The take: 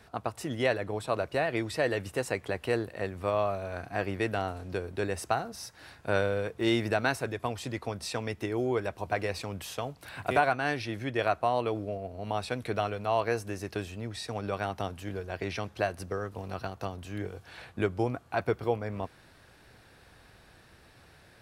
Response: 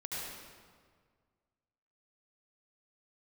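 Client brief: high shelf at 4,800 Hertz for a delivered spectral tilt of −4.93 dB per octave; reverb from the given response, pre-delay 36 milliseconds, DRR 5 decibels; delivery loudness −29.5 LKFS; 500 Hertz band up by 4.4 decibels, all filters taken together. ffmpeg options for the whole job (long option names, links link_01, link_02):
-filter_complex "[0:a]equalizer=frequency=500:width_type=o:gain=5.5,highshelf=frequency=4800:gain=-6,asplit=2[link_01][link_02];[1:a]atrim=start_sample=2205,adelay=36[link_03];[link_02][link_03]afir=irnorm=-1:irlink=0,volume=-7dB[link_04];[link_01][link_04]amix=inputs=2:normalize=0,volume=-1.5dB"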